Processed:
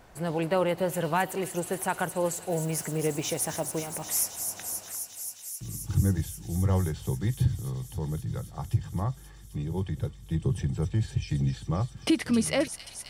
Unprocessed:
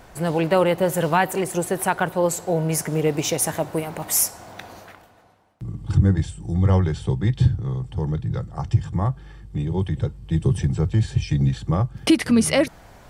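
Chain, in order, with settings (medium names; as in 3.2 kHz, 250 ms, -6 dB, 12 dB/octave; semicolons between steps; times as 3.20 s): feedback echo behind a high-pass 265 ms, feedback 85%, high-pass 4.2 kHz, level -6 dB; 2.49–4.01 s: added noise blue -47 dBFS; trim -7.5 dB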